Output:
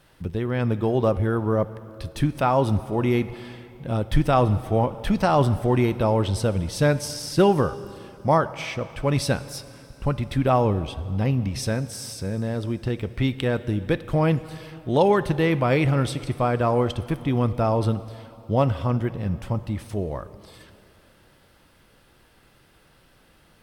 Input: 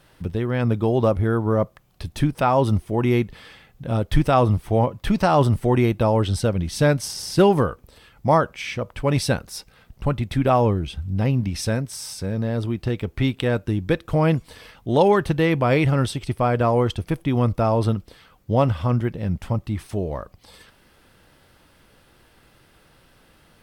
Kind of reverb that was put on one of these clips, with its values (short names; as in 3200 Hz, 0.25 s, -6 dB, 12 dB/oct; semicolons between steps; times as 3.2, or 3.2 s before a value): plate-style reverb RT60 2.9 s, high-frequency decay 0.95×, DRR 14 dB; gain -2 dB